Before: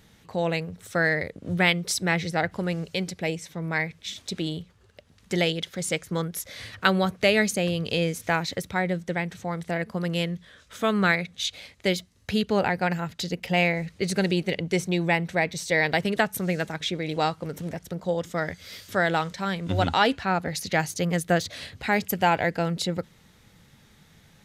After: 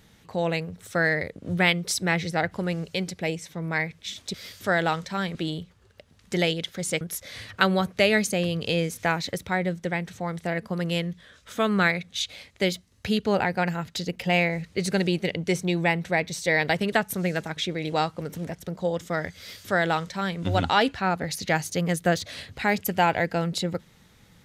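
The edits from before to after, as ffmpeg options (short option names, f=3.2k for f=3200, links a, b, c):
-filter_complex "[0:a]asplit=4[a][b][c][d];[a]atrim=end=4.342[e];[b]atrim=start=18.618:end=19.632[f];[c]atrim=start=4.338:end=6.002[g];[d]atrim=start=6.248[h];[e][f]acrossfade=d=0.004:c1=hsin:c2=hsin[i];[i][g]acrossfade=d=0.004:c1=hsin:c2=hsin[j];[j][h]acrossfade=d=0.004:c1=hsin:c2=hsin"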